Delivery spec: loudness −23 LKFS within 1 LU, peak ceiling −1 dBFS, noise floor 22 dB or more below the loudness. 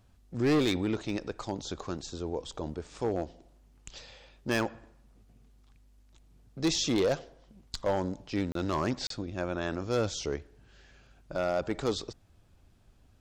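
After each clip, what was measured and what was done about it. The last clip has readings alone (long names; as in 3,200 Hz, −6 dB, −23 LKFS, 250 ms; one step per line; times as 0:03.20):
share of clipped samples 1.1%; peaks flattened at −21.5 dBFS; number of dropouts 2; longest dropout 33 ms; integrated loudness −32.5 LKFS; sample peak −21.5 dBFS; target loudness −23.0 LKFS
→ clipped peaks rebuilt −21.5 dBFS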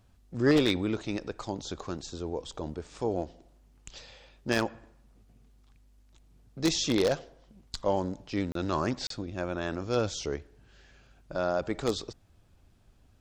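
share of clipped samples 0.0%; number of dropouts 2; longest dropout 33 ms
→ repair the gap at 0:08.52/0:09.07, 33 ms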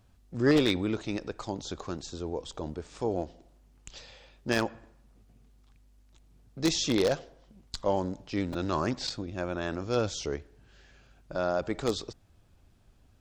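number of dropouts 0; integrated loudness −31.0 LKFS; sample peak −12.5 dBFS; target loudness −23.0 LKFS
→ level +8 dB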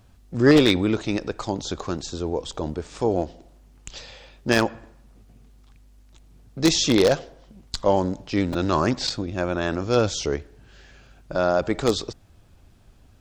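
integrated loudness −23.0 LKFS; sample peak −4.5 dBFS; background noise floor −54 dBFS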